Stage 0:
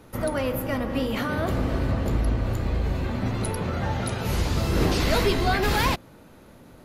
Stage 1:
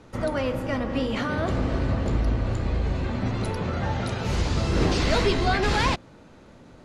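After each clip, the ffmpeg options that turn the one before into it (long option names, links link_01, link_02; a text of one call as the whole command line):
ffmpeg -i in.wav -af "lowpass=frequency=8000:width=0.5412,lowpass=frequency=8000:width=1.3066" out.wav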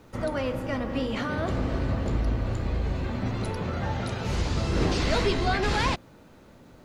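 ffmpeg -i in.wav -af "acrusher=bits=10:mix=0:aa=0.000001,volume=-2.5dB" out.wav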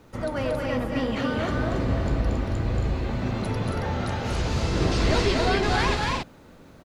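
ffmpeg -i in.wav -af "aecho=1:1:230.3|274.1:0.631|0.631" out.wav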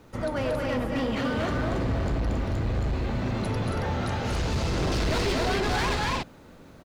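ffmpeg -i in.wav -af "asoftclip=type=hard:threshold=-22.5dB" out.wav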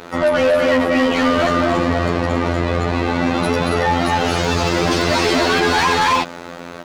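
ffmpeg -i in.wav -filter_complex "[0:a]afftfilt=real='hypot(re,im)*cos(PI*b)':imag='0':win_size=2048:overlap=0.75,adynamicequalizer=threshold=0.00355:dfrequency=6600:dqfactor=1:tfrequency=6600:tqfactor=1:attack=5:release=100:ratio=0.375:range=2:mode=boostabove:tftype=bell,asplit=2[link_01][link_02];[link_02]highpass=frequency=720:poles=1,volume=30dB,asoftclip=type=tanh:threshold=-8dB[link_03];[link_01][link_03]amix=inputs=2:normalize=0,lowpass=frequency=3300:poles=1,volume=-6dB,volume=3dB" out.wav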